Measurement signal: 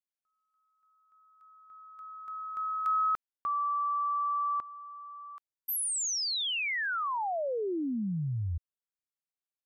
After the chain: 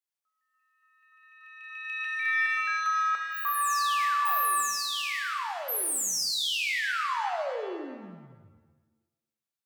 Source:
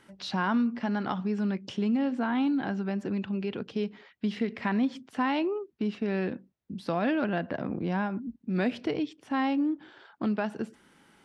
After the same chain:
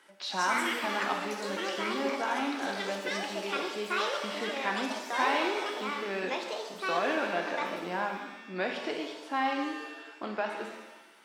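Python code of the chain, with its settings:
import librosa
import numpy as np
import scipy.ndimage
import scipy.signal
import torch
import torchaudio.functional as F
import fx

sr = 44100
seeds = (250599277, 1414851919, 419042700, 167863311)

y = scipy.signal.sosfilt(scipy.signal.butter(2, 490.0, 'highpass', fs=sr, output='sos'), x)
y = fx.echo_pitch(y, sr, ms=234, semitones=6, count=2, db_per_echo=-3.0)
y = fx.rev_shimmer(y, sr, seeds[0], rt60_s=1.0, semitones=7, shimmer_db=-8, drr_db=2.0)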